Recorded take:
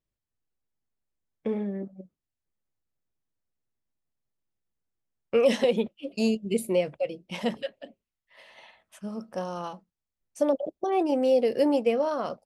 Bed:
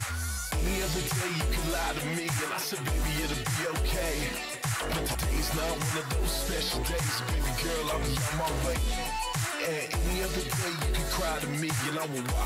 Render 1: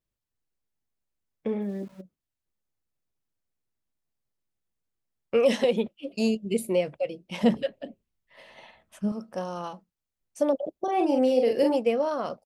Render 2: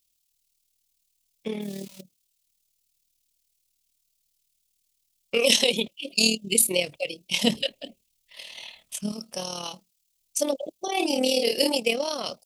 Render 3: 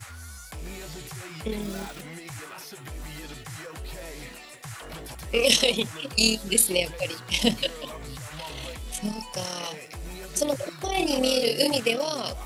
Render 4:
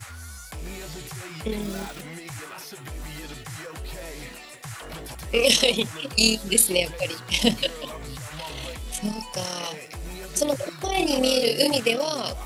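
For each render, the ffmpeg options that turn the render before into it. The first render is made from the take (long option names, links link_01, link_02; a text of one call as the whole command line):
ffmpeg -i in.wav -filter_complex "[0:a]asplit=3[link_01][link_02][link_03];[link_01]afade=type=out:start_time=1.6:duration=0.02[link_04];[link_02]aeval=exprs='val(0)*gte(abs(val(0)),0.00299)':channel_layout=same,afade=type=in:start_time=1.6:duration=0.02,afade=type=out:start_time=2:duration=0.02[link_05];[link_03]afade=type=in:start_time=2:duration=0.02[link_06];[link_04][link_05][link_06]amix=inputs=3:normalize=0,asettb=1/sr,asplit=3[link_07][link_08][link_09];[link_07]atrim=end=7.404[link_10];[link_08]atrim=start=7.4:end=9.12,asetpts=PTS-STARTPTS,afade=type=in:duration=0.004:curve=qsin,afade=type=out:start_time=1.716:duration=0.004:curve=qsin,lowshelf=frequency=470:gain=11[link_11];[link_09]atrim=start=9.116[link_12];[link_10][link_11]acrossfade=duration=0.004:curve1=hsin:curve2=qsin[link_13];[link_13][link_12]acrossfade=duration=0.004:curve1=qsin:curve2=hsin,asplit=3[link_14][link_15][link_16];[link_14]afade=type=out:start_time=10.86:duration=0.02[link_17];[link_15]asplit=2[link_18][link_19];[link_19]adelay=43,volume=-4dB[link_20];[link_18][link_20]amix=inputs=2:normalize=0,afade=type=in:start_time=10.86:duration=0.02,afade=type=out:start_time=11.75:duration=0.02[link_21];[link_16]afade=type=in:start_time=11.75:duration=0.02[link_22];[link_17][link_21][link_22]amix=inputs=3:normalize=0" out.wav
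ffmpeg -i in.wav -af "aexciter=amount=9.9:drive=4.2:freq=2400,tremolo=f=38:d=0.621" out.wav
ffmpeg -i in.wav -i bed.wav -filter_complex "[1:a]volume=-9dB[link_01];[0:a][link_01]amix=inputs=2:normalize=0" out.wav
ffmpeg -i in.wav -af "volume=2dB,alimiter=limit=-2dB:level=0:latency=1" out.wav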